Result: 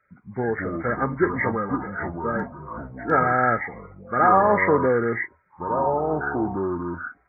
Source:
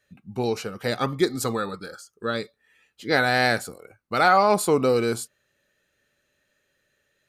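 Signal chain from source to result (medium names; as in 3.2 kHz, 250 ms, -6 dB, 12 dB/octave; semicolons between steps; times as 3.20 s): knee-point frequency compression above 1.2 kHz 4:1; 2.37–3.11 s: hard clipper -17 dBFS, distortion -55 dB; ever faster or slower copies 99 ms, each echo -5 st, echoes 3, each echo -6 dB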